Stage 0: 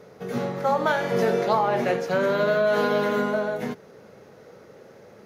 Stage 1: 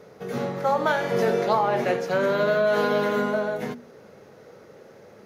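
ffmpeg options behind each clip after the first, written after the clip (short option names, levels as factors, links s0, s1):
-af "bandreject=f=60:t=h:w=6,bandreject=f=120:t=h:w=6,bandreject=f=180:t=h:w=6,bandreject=f=240:t=h:w=6"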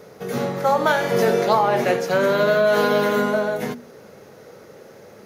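-af "highshelf=f=6500:g=9,volume=1.58"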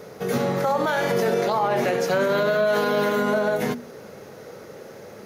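-af "alimiter=limit=0.15:level=0:latency=1:release=82,volume=1.41"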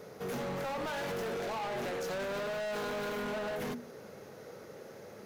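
-af "asoftclip=type=hard:threshold=0.0473,volume=0.398"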